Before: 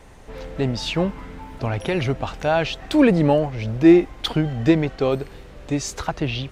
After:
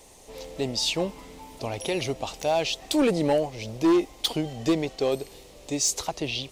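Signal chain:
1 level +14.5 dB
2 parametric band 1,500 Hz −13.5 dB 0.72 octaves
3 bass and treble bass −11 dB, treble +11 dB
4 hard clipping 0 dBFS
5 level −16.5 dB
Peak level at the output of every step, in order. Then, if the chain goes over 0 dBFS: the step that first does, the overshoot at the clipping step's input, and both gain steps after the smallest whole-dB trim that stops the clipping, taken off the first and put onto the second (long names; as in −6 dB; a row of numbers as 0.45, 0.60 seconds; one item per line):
+11.0, +11.0, +8.0, 0.0, −16.5 dBFS
step 1, 8.0 dB
step 1 +6.5 dB, step 5 −8.5 dB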